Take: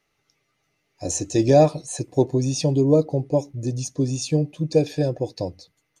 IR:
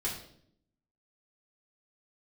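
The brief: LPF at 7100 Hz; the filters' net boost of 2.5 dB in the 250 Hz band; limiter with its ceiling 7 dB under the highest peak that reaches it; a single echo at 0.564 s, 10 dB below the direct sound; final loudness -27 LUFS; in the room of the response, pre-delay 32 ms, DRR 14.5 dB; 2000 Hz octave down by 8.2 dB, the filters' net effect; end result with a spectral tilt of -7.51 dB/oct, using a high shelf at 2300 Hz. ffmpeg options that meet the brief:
-filter_complex "[0:a]lowpass=7.1k,equalizer=f=250:t=o:g=3.5,equalizer=f=2k:t=o:g=-7.5,highshelf=f=2.3k:g=-5.5,alimiter=limit=-11dB:level=0:latency=1,aecho=1:1:564:0.316,asplit=2[a][b];[1:a]atrim=start_sample=2205,adelay=32[c];[b][c]afir=irnorm=-1:irlink=0,volume=-18.5dB[d];[a][d]amix=inputs=2:normalize=0,volume=-4dB"

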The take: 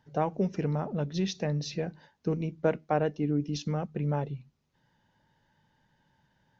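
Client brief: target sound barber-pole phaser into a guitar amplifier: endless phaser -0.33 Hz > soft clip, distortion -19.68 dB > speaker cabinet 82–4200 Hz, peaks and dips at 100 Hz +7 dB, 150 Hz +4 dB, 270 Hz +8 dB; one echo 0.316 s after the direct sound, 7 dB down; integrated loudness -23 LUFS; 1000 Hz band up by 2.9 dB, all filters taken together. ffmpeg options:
-filter_complex "[0:a]equalizer=f=1k:t=o:g=4,aecho=1:1:316:0.447,asplit=2[a][b];[b]afreqshift=-0.33[c];[a][c]amix=inputs=2:normalize=1,asoftclip=threshold=-18.5dB,highpass=82,equalizer=f=100:t=q:w=4:g=7,equalizer=f=150:t=q:w=4:g=4,equalizer=f=270:t=q:w=4:g=8,lowpass=f=4.2k:w=0.5412,lowpass=f=4.2k:w=1.3066,volume=7.5dB"

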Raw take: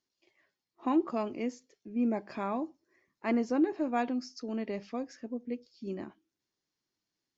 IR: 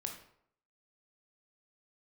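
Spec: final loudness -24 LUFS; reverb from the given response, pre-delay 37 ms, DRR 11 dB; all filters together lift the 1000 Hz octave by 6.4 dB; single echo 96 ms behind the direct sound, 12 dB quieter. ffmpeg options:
-filter_complex "[0:a]equalizer=f=1k:t=o:g=8.5,aecho=1:1:96:0.251,asplit=2[a][b];[1:a]atrim=start_sample=2205,adelay=37[c];[b][c]afir=irnorm=-1:irlink=0,volume=-10dB[d];[a][d]amix=inputs=2:normalize=0,volume=7dB"

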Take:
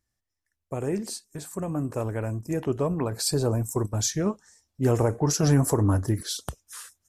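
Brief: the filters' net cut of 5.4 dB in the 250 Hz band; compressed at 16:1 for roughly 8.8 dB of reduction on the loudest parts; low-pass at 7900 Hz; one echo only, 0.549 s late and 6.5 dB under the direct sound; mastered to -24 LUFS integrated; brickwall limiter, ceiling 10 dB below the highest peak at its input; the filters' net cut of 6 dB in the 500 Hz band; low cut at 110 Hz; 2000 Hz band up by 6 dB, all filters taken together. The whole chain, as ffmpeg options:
-af "highpass=110,lowpass=7.9k,equalizer=f=250:t=o:g=-5.5,equalizer=f=500:t=o:g=-6,equalizer=f=2k:t=o:g=8.5,acompressor=threshold=-27dB:ratio=16,alimiter=limit=-23.5dB:level=0:latency=1,aecho=1:1:549:0.473,volume=10.5dB"

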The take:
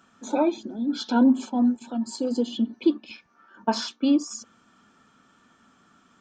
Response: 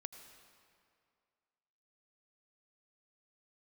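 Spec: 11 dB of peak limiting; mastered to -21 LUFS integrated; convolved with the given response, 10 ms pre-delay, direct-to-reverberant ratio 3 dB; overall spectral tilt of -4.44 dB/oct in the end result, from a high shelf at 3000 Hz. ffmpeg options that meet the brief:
-filter_complex "[0:a]highshelf=f=3k:g=-6.5,alimiter=limit=-20.5dB:level=0:latency=1,asplit=2[a][b];[1:a]atrim=start_sample=2205,adelay=10[c];[b][c]afir=irnorm=-1:irlink=0,volume=1dB[d];[a][d]amix=inputs=2:normalize=0,volume=9dB"

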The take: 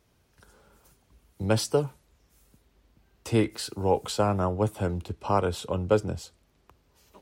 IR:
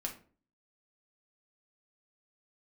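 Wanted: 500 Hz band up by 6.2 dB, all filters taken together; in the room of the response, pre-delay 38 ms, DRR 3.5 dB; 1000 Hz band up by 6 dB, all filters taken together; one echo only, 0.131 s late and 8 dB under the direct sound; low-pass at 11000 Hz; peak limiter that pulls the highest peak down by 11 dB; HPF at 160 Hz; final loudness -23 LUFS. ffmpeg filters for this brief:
-filter_complex "[0:a]highpass=160,lowpass=11k,equalizer=f=500:t=o:g=6,equalizer=f=1k:t=o:g=5.5,alimiter=limit=-14dB:level=0:latency=1,aecho=1:1:131:0.398,asplit=2[a][b];[1:a]atrim=start_sample=2205,adelay=38[c];[b][c]afir=irnorm=-1:irlink=0,volume=-3.5dB[d];[a][d]amix=inputs=2:normalize=0,volume=2.5dB"

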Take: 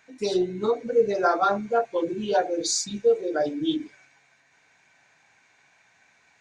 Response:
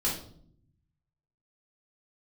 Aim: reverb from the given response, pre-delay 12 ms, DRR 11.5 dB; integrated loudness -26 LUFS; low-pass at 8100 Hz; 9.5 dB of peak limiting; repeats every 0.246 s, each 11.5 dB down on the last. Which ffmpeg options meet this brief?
-filter_complex "[0:a]lowpass=8.1k,alimiter=limit=-19.5dB:level=0:latency=1,aecho=1:1:246|492|738:0.266|0.0718|0.0194,asplit=2[a][b];[1:a]atrim=start_sample=2205,adelay=12[c];[b][c]afir=irnorm=-1:irlink=0,volume=-18.5dB[d];[a][d]amix=inputs=2:normalize=0,volume=2dB"

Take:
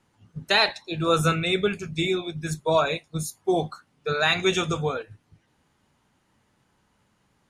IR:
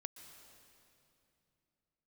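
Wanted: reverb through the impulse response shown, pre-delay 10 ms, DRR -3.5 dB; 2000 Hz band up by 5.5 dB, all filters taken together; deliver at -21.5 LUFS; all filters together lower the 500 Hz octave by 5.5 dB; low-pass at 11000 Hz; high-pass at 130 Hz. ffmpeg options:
-filter_complex "[0:a]highpass=130,lowpass=11k,equalizer=f=500:t=o:g=-8,equalizer=f=2k:t=o:g=7.5,asplit=2[a][b];[1:a]atrim=start_sample=2205,adelay=10[c];[b][c]afir=irnorm=-1:irlink=0,volume=8dB[d];[a][d]amix=inputs=2:normalize=0,volume=-3.5dB"

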